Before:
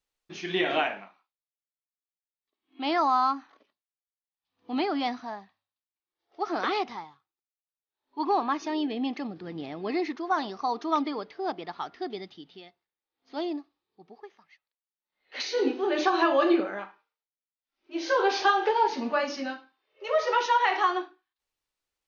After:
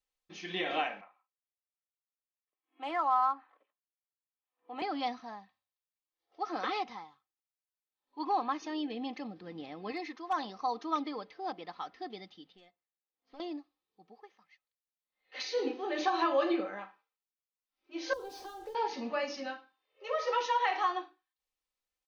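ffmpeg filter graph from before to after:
-filter_complex "[0:a]asettb=1/sr,asplit=3[s0][s1][s2];[s0]atrim=end=1.014[s3];[s1]atrim=start=1.01:end=4.82,asetpts=PTS-STARTPTS,afade=t=in:d=0.004:c=qsin,afade=t=out:st=3.806:d=0.004:c=qsin,acrossover=split=340 2900:gain=0.0891 1 0.0891[s4][s5][s6];[s4][s5][s6]amix=inputs=3:normalize=0,adynamicsmooth=sensitivity=5.5:basefreq=5500[s7];[s2]atrim=start=4.816[s8];[s3][s7]acrossfade=d=0.004:c1=hsin:c2=qsin[s9];[s9][s8]acrossfade=d=0.004:c1=qsin:c2=hsin,asettb=1/sr,asplit=3[s10][s11][s12];[s10]atrim=end=9.924[s13];[s11]atrim=start=9.92:end=10.33,asetpts=PTS-STARTPTS,afade=t=in:d=0.004:c=qsin,afade=t=out:st=0.406:d=0.004:c=qsin,lowshelf=f=420:g=-6.5,asoftclip=type=hard:threshold=0.0891[s14];[s12]atrim=start=10.326[s15];[s13][s14]acrossfade=d=0.004:c1=hsin:c2=qsin[s16];[s16][s15]acrossfade=d=0.004:c1=qsin:c2=hsin,asettb=1/sr,asplit=3[s17][s18][s19];[s17]atrim=end=12.524[s20];[s18]atrim=start=12.52:end=13.4,asetpts=PTS-STARTPTS,afade=t=in:d=0.004:c=qsin,afade=t=out:st=0.876:d=0.004:c=qsin,bass=f=250:g=-1,treble=f=4000:g=-7,acompressor=threshold=0.0126:ratio=4:attack=3.2:release=140:knee=1:detection=peak,aeval=exprs='(tanh(28.2*val(0)+0.75)-tanh(0.75))/28.2':c=same[s21];[s19]atrim=start=13.396[s22];[s20][s21]acrossfade=d=0.004:c1=hsin:c2=qsin[s23];[s23][s22]acrossfade=d=0.004:c1=qsin:c2=hsin,asettb=1/sr,asplit=3[s24][s25][s26];[s24]atrim=end=18.134[s27];[s25]atrim=start=18.13:end=18.75,asetpts=PTS-STARTPTS,afade=t=in:d=0.004:c=qsin,afade=t=out:st=0.616:d=0.004:c=qsin,aeval=exprs='sgn(val(0))*max(abs(val(0))-0.00562,0)':c=same,equalizer=f=2700:t=o:w=2.5:g=-15,acrossover=split=340|3000[s28][s29][s30];[s29]acompressor=threshold=0.00891:ratio=6:attack=3.2:release=140:knee=2.83:detection=peak[s31];[s28][s31][s30]amix=inputs=3:normalize=0[s32];[s26]atrim=start=18.746[s33];[s27][s32]acrossfade=d=0.004:c1=hsin:c2=qsin[s34];[s34][s33]acrossfade=d=0.004:c1=qsin:c2=hsin,equalizer=f=260:t=o:w=0.27:g=-7.5,bandreject=f=1500:w=19,aecho=1:1:3.9:0.48,volume=0.473"

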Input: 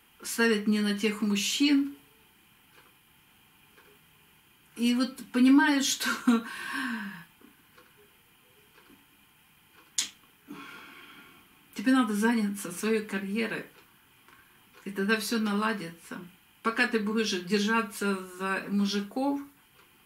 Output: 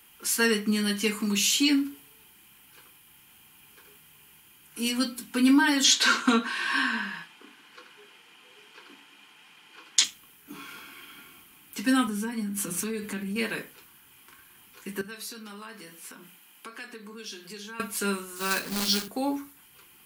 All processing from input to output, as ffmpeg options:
-filter_complex "[0:a]asettb=1/sr,asplit=3[s0][s1][s2];[s0]atrim=end=5.844[s3];[s1]atrim=start=5.84:end=10.04,asetpts=PTS-STARTPTS,afade=t=in:d=0.004:c=qsin,afade=t=out:st=4.196:d=0.004:c=qsin,highpass=290,lowpass=5000,acontrast=59[s4];[s2]atrim=start=10.036[s5];[s3][s4]acrossfade=d=0.004:c1=hsin:c2=qsin[s6];[s6][s5]acrossfade=d=0.004:c1=qsin:c2=hsin,asettb=1/sr,asplit=3[s7][s8][s9];[s7]atrim=end=12.074[s10];[s8]atrim=start=12.07:end=13.36,asetpts=PTS-STARTPTS,afade=t=in:d=0.004:c=qsin,afade=t=out:st=1.286:d=0.004:c=qsin,equalizer=f=75:w=0.32:g=9,bandreject=f=5200:w=21,acompressor=threshold=0.0316:ratio=4:attack=3.2:release=140:knee=1:detection=peak[s11];[s9]atrim=start=13.356[s12];[s10][s11]acrossfade=d=0.004:c1=hsin:c2=qsin[s13];[s13][s12]acrossfade=d=0.004:c1=qsin:c2=hsin,asettb=1/sr,asplit=3[s14][s15][s16];[s14]atrim=end=15.014[s17];[s15]atrim=start=15.01:end=17.8,asetpts=PTS-STARTPTS,afade=t=in:d=0.004:c=qsin,afade=t=out:st=2.786:d=0.004:c=qsin,highpass=230,acompressor=threshold=0.00562:ratio=3:attack=3.2:release=140:knee=1:detection=peak[s18];[s16]atrim=start=17.796[s19];[s17][s18]acrossfade=d=0.004:c1=hsin:c2=qsin[s20];[s20][s19]acrossfade=d=0.004:c1=qsin:c2=hsin,asettb=1/sr,asplit=3[s21][s22][s23];[s21]atrim=end=18.364[s24];[s22]atrim=start=18.36:end=19.08,asetpts=PTS-STARTPTS,afade=t=in:d=0.004:c=qsin,afade=t=out:st=0.716:d=0.004:c=qsin,acrusher=bits=2:mode=log:mix=0:aa=0.000001,equalizer=f=4400:w=3:g=6.5,bandreject=f=50:t=h:w=6,bandreject=f=100:t=h:w=6,bandreject=f=150:t=h:w=6,bandreject=f=200:t=h:w=6,bandreject=f=250:t=h:w=6,bandreject=f=300:t=h:w=6,bandreject=f=350:t=h:w=6,bandreject=f=400:t=h:w=6,bandreject=f=450:t=h:w=6,bandreject=f=500:t=h:w=6[s25];[s23]atrim=start=19.076[s26];[s24][s25]acrossfade=d=0.004:c1=hsin:c2=qsin[s27];[s27][s26]acrossfade=d=0.004:c1=qsin:c2=hsin,highshelf=f=3900:g=10,bandreject=f=60:t=h:w=6,bandreject=f=120:t=h:w=6,bandreject=f=180:t=h:w=6,bandreject=f=240:t=h:w=6"

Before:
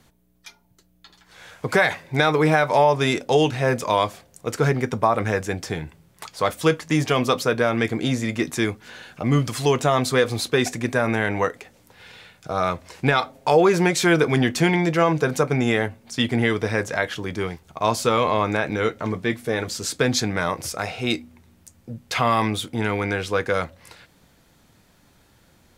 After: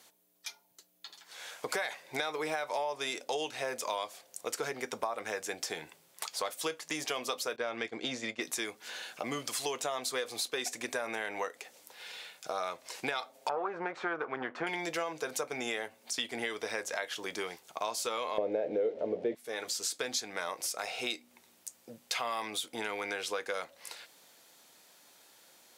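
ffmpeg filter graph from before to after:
-filter_complex "[0:a]asettb=1/sr,asplit=3[s0][s1][s2];[s0]atrim=end=7.564[s3];[s1]atrim=start=7.56:end=8.41,asetpts=PTS-STARTPTS,afade=t=in:d=0.004:c=qsin,afade=t=out:st=0.846:d=0.004:c=qsin,agate=range=0.0224:threshold=0.0631:ratio=3:release=100:detection=peak,lowpass=5100,lowshelf=f=140:g=6.5[s4];[s2]atrim=start=8.406[s5];[s3][s4]acrossfade=d=0.004:c1=hsin:c2=qsin[s6];[s6][s5]acrossfade=d=0.004:c1=qsin:c2=hsin,asettb=1/sr,asplit=3[s7][s8][s9];[s7]atrim=end=13.494[s10];[s8]atrim=start=13.49:end=14.67,asetpts=PTS-STARTPTS,afade=t=in:d=0.004:c=qsin,afade=t=out:st=1.176:d=0.004:c=qsin,aeval=exprs='if(lt(val(0),0),0.447*val(0),val(0))':c=same,lowpass=f=1300:t=q:w=2.5[s11];[s9]atrim=start=14.666[s12];[s10][s11]acrossfade=d=0.004:c1=hsin:c2=qsin[s13];[s13][s12]acrossfade=d=0.004:c1=qsin:c2=hsin,asettb=1/sr,asplit=3[s14][s15][s16];[s14]atrim=end=18.384[s17];[s15]atrim=start=18.38:end=19.35,asetpts=PTS-STARTPTS,afade=t=in:d=0.004:c=qsin,afade=t=out:st=0.966:d=0.004:c=qsin,aeval=exprs='val(0)+0.5*0.0335*sgn(val(0))':c=same,lowpass=2400,lowshelf=f=780:t=q:w=3:g=13[s18];[s16]atrim=start=19.346[s19];[s17][s18]acrossfade=d=0.004:c1=hsin:c2=qsin[s20];[s20][s19]acrossfade=d=0.004:c1=qsin:c2=hsin,highpass=680,equalizer=f=1400:t=o:w=2.2:g=-8,acompressor=threshold=0.0126:ratio=4,volume=1.68"

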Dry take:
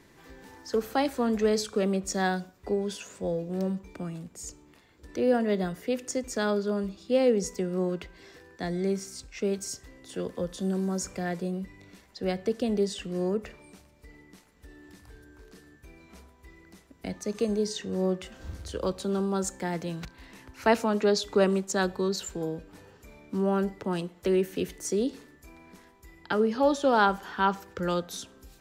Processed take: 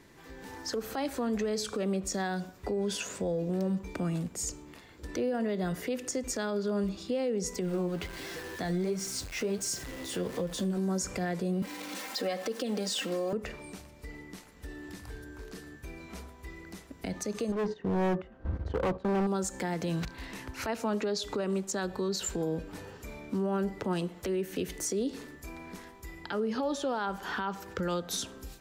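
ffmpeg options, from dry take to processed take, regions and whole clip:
-filter_complex "[0:a]asettb=1/sr,asplit=3[s0][s1][s2];[s0]atrim=end=7.614[s3];[s1]atrim=start=7.61:end=10.78,asetpts=PTS-STARTPTS,afade=t=in:d=0.004:c=qsin,afade=t=out:st=3.166:d=0.004:c=qsin,aeval=exprs='val(0)+0.5*0.00841*sgn(val(0))':c=same,flanger=delay=5.7:depth=7:regen=42:speed=1.4:shape=sinusoidal[s4];[s2]atrim=start=10.776[s5];[s3][s4]acrossfade=d=0.004:c1=hsin:c2=qsin[s6];[s6][s5]acrossfade=d=0.004:c1=qsin:c2=hsin,asettb=1/sr,asplit=3[s7][s8][s9];[s7]atrim=end=11.624[s10];[s8]atrim=start=11.62:end=13.33,asetpts=PTS-STARTPTS,afade=t=in:d=0.004:c=qsin,afade=t=out:st=1.706:d=0.004:c=qsin,aeval=exprs='val(0)+0.5*0.00631*sgn(val(0))':c=same,highpass=340,aecho=1:1:3.8:0.79,atrim=end_sample=75411[s11];[s9]atrim=start=13.326[s12];[s10][s11]acrossfade=d=0.004:c1=hsin:c2=qsin[s13];[s13][s12]acrossfade=d=0.004:c1=qsin:c2=hsin,asettb=1/sr,asplit=3[s14][s15][s16];[s14]atrim=end=17.524[s17];[s15]atrim=start=17.52:end=19.27,asetpts=PTS-STARTPTS,afade=t=in:d=0.004:c=qsin,afade=t=out:st=1.746:d=0.004:c=qsin,lowpass=1300,agate=range=0.251:threshold=0.00708:ratio=16:release=100:detection=peak,asoftclip=type=hard:threshold=0.0266[s18];[s16]atrim=start=19.266[s19];[s17][s18]acrossfade=d=0.004:c1=hsin:c2=qsin[s20];[s20][s19]acrossfade=d=0.004:c1=qsin:c2=hsin,acompressor=threshold=0.0251:ratio=6,alimiter=level_in=2.11:limit=0.0631:level=0:latency=1:release=74,volume=0.473,dynaudnorm=f=310:g=3:m=2.24"

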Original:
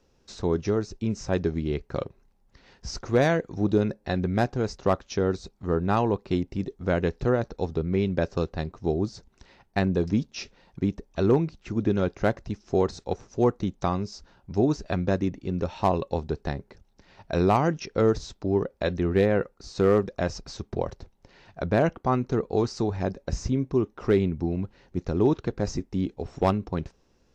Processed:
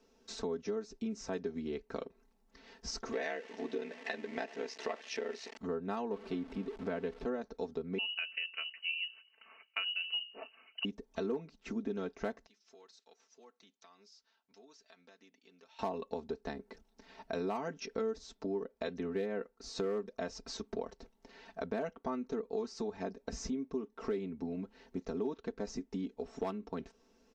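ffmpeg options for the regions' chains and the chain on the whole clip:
-filter_complex "[0:a]asettb=1/sr,asplit=3[s0][s1][s2];[s0]atrim=end=3.124[s3];[s1]atrim=start=3.12:end=5.57,asetpts=PTS-STARTPTS,afade=t=in:d=0.004:c=qsin,afade=t=out:st=2.446:d=0.004:c=qsin,aeval=exprs='val(0)+0.5*0.0178*sgn(val(0))':c=same,aeval=exprs='val(0)*sin(2*PI*34*n/s)':c=same,highpass=390,equalizer=f=1300:t=q:w=4:g=-5,equalizer=f=1900:t=q:w=4:g=10,equalizer=f=2700:t=q:w=4:g=7,lowpass=f=6300:w=0.5412,lowpass=f=6300:w=1.3066[s4];[s2]atrim=start=5.566[s5];[s3][s4]acrossfade=d=0.004:c1=hsin:c2=qsin[s6];[s6][s5]acrossfade=d=0.004:c1=qsin:c2=hsin,asettb=1/sr,asplit=3[s7][s8][s9];[s7]atrim=end=6.114[s10];[s8]atrim=start=6.11:end=7.26,asetpts=PTS-STARTPTS,afade=t=in:d=0.004:c=qsin,afade=t=out:st=1.146:d=0.004:c=qsin,aeval=exprs='val(0)+0.5*0.0168*sgn(val(0))':c=same,lowpass=3800[s11];[s9]atrim=start=7.256[s12];[s10][s11]acrossfade=d=0.004:c1=hsin:c2=qsin[s13];[s13][s12]acrossfade=d=0.004:c1=qsin:c2=hsin,asettb=1/sr,asplit=3[s14][s15][s16];[s14]atrim=end=7.984[s17];[s15]atrim=start=7.98:end=10.85,asetpts=PTS-STARTPTS,afade=t=in:d=0.004:c=qsin,afade=t=out:st=2.866:d=0.004:c=qsin,highpass=150,bandreject=f=60:t=h:w=6,bandreject=f=120:t=h:w=6,bandreject=f=180:t=h:w=6,bandreject=f=240:t=h:w=6,bandreject=f=300:t=h:w=6,bandreject=f=360:t=h:w=6,bandreject=f=420:t=h:w=6,lowpass=f=2600:t=q:w=0.5098,lowpass=f=2600:t=q:w=0.6013,lowpass=f=2600:t=q:w=0.9,lowpass=f=2600:t=q:w=2.563,afreqshift=-3100[s18];[s16]atrim=start=10.846[s19];[s17][s18]acrossfade=d=0.004:c1=hsin:c2=qsin[s20];[s20][s19]acrossfade=d=0.004:c1=qsin:c2=hsin,asettb=1/sr,asplit=3[s21][s22][s23];[s21]atrim=end=12.464[s24];[s22]atrim=start=12.46:end=15.79,asetpts=PTS-STARTPTS,afade=t=in:d=0.004:c=qsin,afade=t=out:st=3.326:d=0.004:c=qsin,lowpass=4100,aderivative,acompressor=threshold=0.00126:ratio=3:attack=3.2:release=140:knee=1:detection=peak[s25];[s23]atrim=start=15.786[s26];[s24][s25]acrossfade=d=0.004:c1=hsin:c2=qsin[s27];[s27][s26]acrossfade=d=0.004:c1=qsin:c2=hsin,lowshelf=f=190:t=q:w=1.5:g=-9,aecho=1:1:4.5:0.85,acompressor=threshold=0.02:ratio=3,volume=0.631"

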